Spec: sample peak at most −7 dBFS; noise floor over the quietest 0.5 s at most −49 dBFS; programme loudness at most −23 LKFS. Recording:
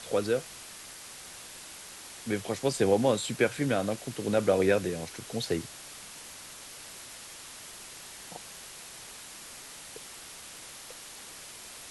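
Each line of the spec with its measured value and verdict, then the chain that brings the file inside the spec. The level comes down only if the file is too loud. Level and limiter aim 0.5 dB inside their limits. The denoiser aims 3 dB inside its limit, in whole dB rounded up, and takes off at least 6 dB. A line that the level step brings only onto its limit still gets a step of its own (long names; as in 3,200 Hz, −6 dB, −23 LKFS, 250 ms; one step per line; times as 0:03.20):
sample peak −12.0 dBFS: in spec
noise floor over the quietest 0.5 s −46 dBFS: out of spec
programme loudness −32.5 LKFS: in spec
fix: broadband denoise 6 dB, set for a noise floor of −46 dBFS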